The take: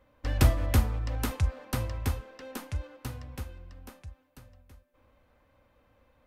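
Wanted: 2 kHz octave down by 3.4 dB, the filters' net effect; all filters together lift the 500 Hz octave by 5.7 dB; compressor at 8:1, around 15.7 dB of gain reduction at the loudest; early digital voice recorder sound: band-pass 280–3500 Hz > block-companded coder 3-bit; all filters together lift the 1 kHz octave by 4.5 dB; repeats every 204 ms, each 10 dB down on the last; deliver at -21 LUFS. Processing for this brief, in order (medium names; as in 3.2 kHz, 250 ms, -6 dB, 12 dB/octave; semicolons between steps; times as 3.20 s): peaking EQ 500 Hz +6 dB; peaking EQ 1 kHz +5.5 dB; peaking EQ 2 kHz -6.5 dB; compression 8:1, threshold -31 dBFS; band-pass 280–3500 Hz; feedback delay 204 ms, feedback 32%, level -10 dB; block-companded coder 3-bit; trim +21.5 dB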